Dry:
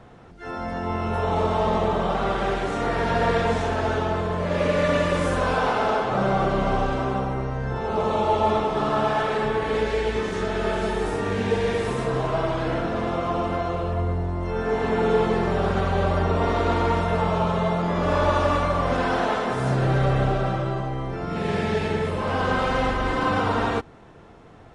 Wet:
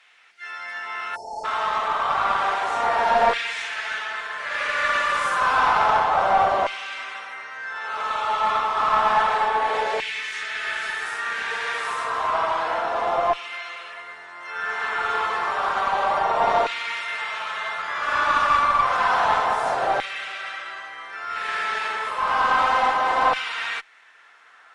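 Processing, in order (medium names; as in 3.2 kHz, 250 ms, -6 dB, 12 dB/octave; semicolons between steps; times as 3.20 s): LFO high-pass saw down 0.3 Hz 730–2400 Hz; valve stage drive 12 dB, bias 0.35; spectral selection erased 1.16–1.44 s, 910–4200 Hz; trim +3 dB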